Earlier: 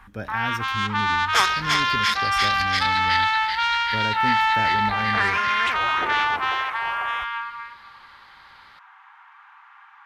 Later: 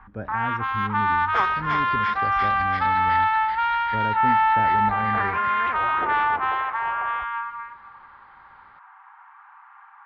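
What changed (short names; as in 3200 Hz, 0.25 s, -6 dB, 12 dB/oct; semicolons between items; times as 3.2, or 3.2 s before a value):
first sound +3.5 dB; master: add LPF 1300 Hz 12 dB/oct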